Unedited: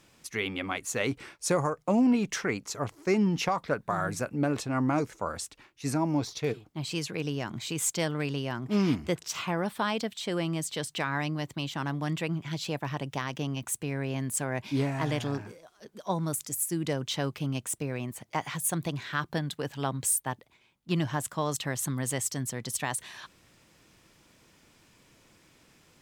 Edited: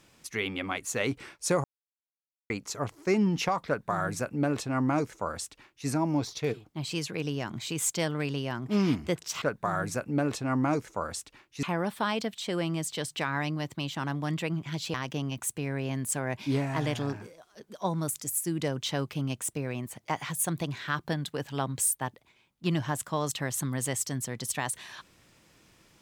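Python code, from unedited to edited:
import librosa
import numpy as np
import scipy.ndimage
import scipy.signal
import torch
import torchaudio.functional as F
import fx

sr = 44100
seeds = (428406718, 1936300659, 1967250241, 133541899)

y = fx.edit(x, sr, fx.silence(start_s=1.64, length_s=0.86),
    fx.duplicate(start_s=3.67, length_s=2.21, to_s=9.42),
    fx.cut(start_s=12.73, length_s=0.46), tone=tone)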